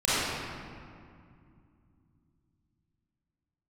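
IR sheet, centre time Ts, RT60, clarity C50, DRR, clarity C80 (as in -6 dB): 172 ms, 2.3 s, -8.0 dB, -13.5 dB, -4.0 dB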